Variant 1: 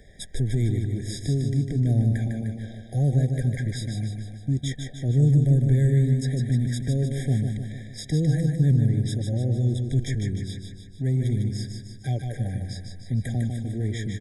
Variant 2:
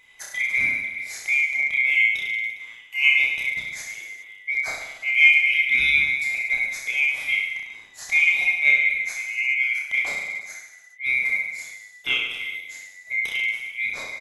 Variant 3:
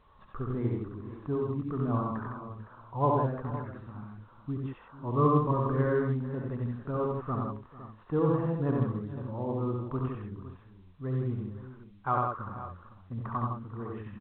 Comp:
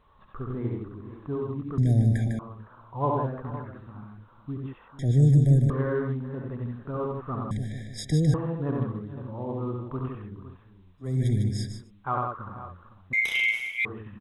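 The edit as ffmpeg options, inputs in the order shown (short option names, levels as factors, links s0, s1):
-filter_complex "[0:a]asplit=4[s0][s1][s2][s3];[2:a]asplit=6[s4][s5][s6][s7][s8][s9];[s4]atrim=end=1.782[s10];[s0]atrim=start=1.778:end=2.392[s11];[s5]atrim=start=2.388:end=4.992[s12];[s1]atrim=start=4.988:end=5.702[s13];[s6]atrim=start=5.698:end=7.512[s14];[s2]atrim=start=7.508:end=8.342[s15];[s7]atrim=start=8.338:end=11.21[s16];[s3]atrim=start=10.97:end=11.91[s17];[s8]atrim=start=11.67:end=13.132[s18];[1:a]atrim=start=13.128:end=13.852[s19];[s9]atrim=start=13.848[s20];[s10][s11]acrossfade=d=0.004:c1=hsin:c2=hsin[s21];[s21][s12]acrossfade=d=0.004:c1=hsin:c2=hsin[s22];[s22][s13]acrossfade=d=0.004:c1=hsin:c2=hsin[s23];[s23][s14]acrossfade=d=0.004:c1=hsin:c2=hsin[s24];[s24][s15]acrossfade=d=0.004:c1=hsin:c2=hsin[s25];[s25][s16]acrossfade=d=0.004:c1=hsin:c2=hsin[s26];[s26][s17]acrossfade=d=0.24:c1=tri:c2=tri[s27];[s27][s18]acrossfade=d=0.24:c1=tri:c2=tri[s28];[s28][s19]acrossfade=d=0.004:c1=hsin:c2=hsin[s29];[s29][s20]acrossfade=d=0.004:c1=hsin:c2=hsin"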